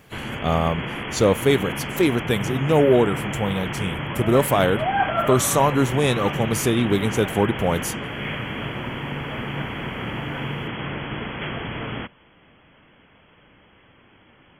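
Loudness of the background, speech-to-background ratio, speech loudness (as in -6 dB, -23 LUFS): -28.0 LUFS, 6.5 dB, -21.5 LUFS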